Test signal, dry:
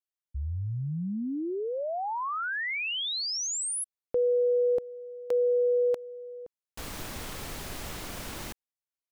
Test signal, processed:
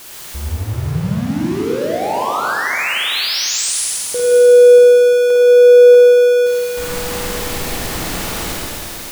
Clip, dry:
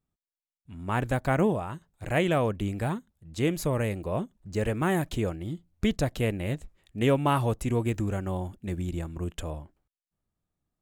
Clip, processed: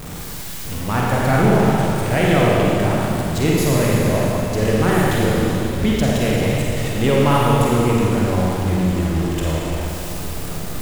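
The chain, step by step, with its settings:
converter with a step at zero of −29.5 dBFS
four-comb reverb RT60 3 s, DRR −5 dB
level +3 dB

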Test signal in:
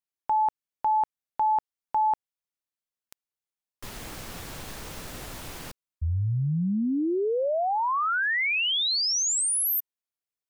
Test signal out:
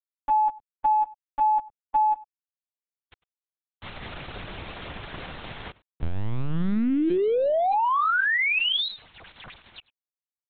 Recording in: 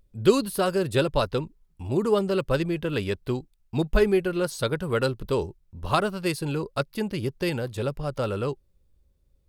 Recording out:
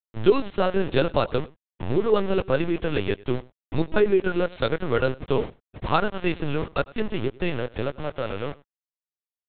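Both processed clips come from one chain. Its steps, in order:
fade-out on the ending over 2.37 s
high-pass filter 49 Hz 6 dB per octave
in parallel at +3 dB: downward compressor 10 to 1, threshold −34 dBFS
on the sum: centre clipping without the shift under −29.5 dBFS
on a send: single-tap delay 99 ms −22.5 dB
on the sum: linear-prediction vocoder at 8 kHz pitch kept

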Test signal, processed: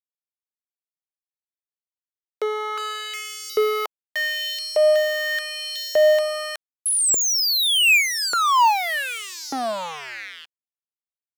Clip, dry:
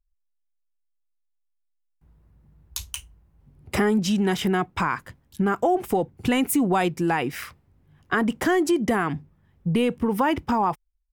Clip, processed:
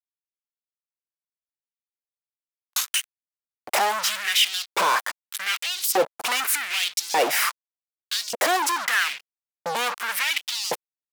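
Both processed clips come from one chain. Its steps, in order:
high-shelf EQ 2,500 Hz +7 dB
fuzz pedal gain 44 dB, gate −41 dBFS
auto-filter high-pass saw up 0.84 Hz 470–5,500 Hz
level −7 dB

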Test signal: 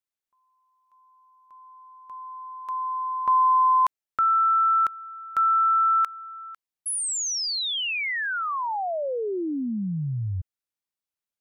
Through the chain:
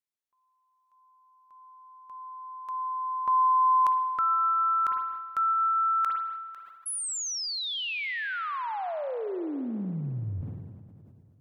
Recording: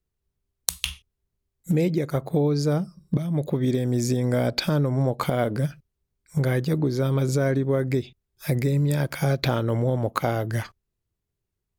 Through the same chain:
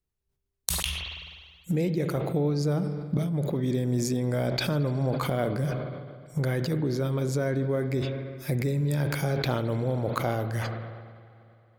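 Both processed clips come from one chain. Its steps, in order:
spring reverb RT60 3.1 s, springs 48/53 ms, chirp 25 ms, DRR 10.5 dB
level that may fall only so fast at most 36 dB per second
level −5 dB

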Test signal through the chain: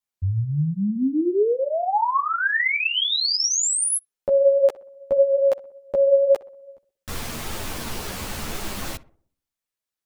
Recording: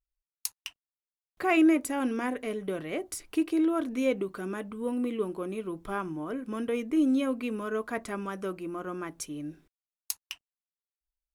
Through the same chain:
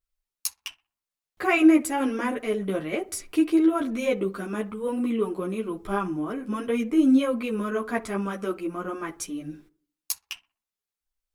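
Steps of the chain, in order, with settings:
on a send: feedback echo with a low-pass in the loop 62 ms, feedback 49%, low-pass 1,400 Hz, level −17 dB
on the sum: string-ensemble chorus
level +7.5 dB

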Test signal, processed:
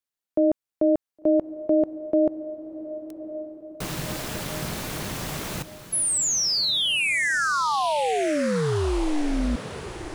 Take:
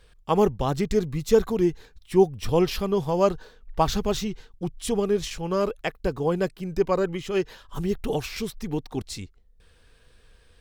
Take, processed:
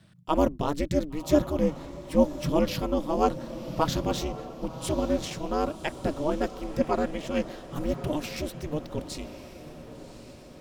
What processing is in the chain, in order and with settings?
ring modulation 150 Hz
feedback delay with all-pass diffusion 1,101 ms, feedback 52%, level −13 dB

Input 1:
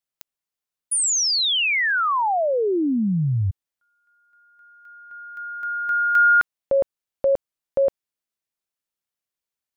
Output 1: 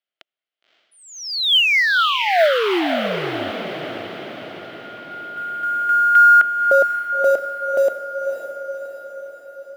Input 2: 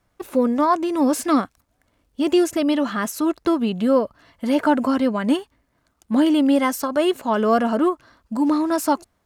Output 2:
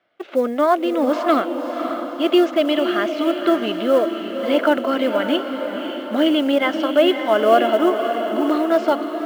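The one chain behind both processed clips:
loudspeaker in its box 320–4,200 Hz, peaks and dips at 350 Hz +4 dB, 650 Hz +9 dB, 970 Hz −7 dB, 1,400 Hz +5 dB, 2,100 Hz +5 dB, 3,100 Hz +8 dB
floating-point word with a short mantissa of 4 bits
feedback delay with all-pass diffusion 559 ms, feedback 57%, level −7 dB

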